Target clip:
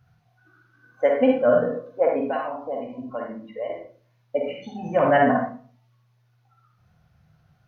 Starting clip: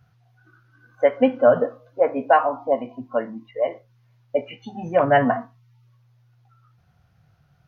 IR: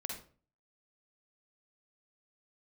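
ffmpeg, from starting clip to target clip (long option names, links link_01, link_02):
-filter_complex "[0:a]asettb=1/sr,asplit=3[link_01][link_02][link_03];[link_01]atrim=end=1.274[link_04];[link_02]atrim=start=1.27:end=1.68,asetpts=PTS-STARTPTS,afade=type=in:duration=0.004:curve=qsin,afade=type=out:start_time=0.406:duration=0.004:curve=qsin,equalizer=frequency=860:width=2:gain=-8[link_05];[link_03]atrim=start=1.676[link_06];[link_04][link_05]acrossfade=duration=0.004:curve1=hsin:curve2=qsin[link_07];[link_07][link_06]acrossfade=duration=0.004:curve1=qsin:curve2=hsin,asettb=1/sr,asplit=3[link_08][link_09][link_10];[link_08]atrim=end=2.234[link_11];[link_09]atrim=start=2.23:end=3.7,asetpts=PTS-STARTPTS,afade=type=in:duration=0.004:curve=qsin,afade=type=out:start_time=1.466:duration=0.004:curve=qsin,acrossover=split=150|3000[link_12][link_13][link_14];[link_13]acompressor=threshold=-27dB:ratio=3[link_15];[link_12][link_15][link_14]amix=inputs=3:normalize=0[link_16];[link_10]atrim=start=3.696[link_17];[link_11][link_16]acrossfade=duration=0.004:curve1=hsin:curve2=qsin[link_18];[link_18][link_17]acrossfade=duration=0.004:curve1=qsin:curve2=hsin[link_19];[1:a]atrim=start_sample=2205[link_20];[link_19][link_20]afir=irnorm=-1:irlink=0"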